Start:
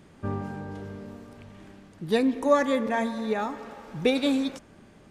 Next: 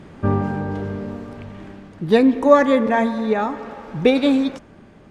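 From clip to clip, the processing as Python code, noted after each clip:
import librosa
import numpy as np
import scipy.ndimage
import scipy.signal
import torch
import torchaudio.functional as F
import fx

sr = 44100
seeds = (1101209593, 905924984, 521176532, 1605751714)

y = fx.lowpass(x, sr, hz=2500.0, slope=6)
y = fx.rider(y, sr, range_db=4, speed_s=2.0)
y = F.gain(torch.from_numpy(y), 8.0).numpy()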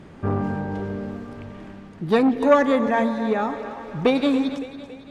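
y = fx.echo_split(x, sr, split_hz=330.0, low_ms=156, high_ms=280, feedback_pct=52, wet_db=-13)
y = fx.transformer_sat(y, sr, knee_hz=600.0)
y = F.gain(torch.from_numpy(y), -2.5).numpy()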